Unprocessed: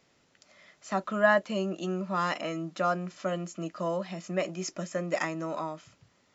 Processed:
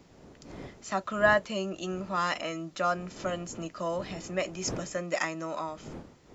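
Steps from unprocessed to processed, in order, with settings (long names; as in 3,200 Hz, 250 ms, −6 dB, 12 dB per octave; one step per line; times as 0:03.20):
wind on the microphone 320 Hz −43 dBFS
spectral tilt +1.5 dB per octave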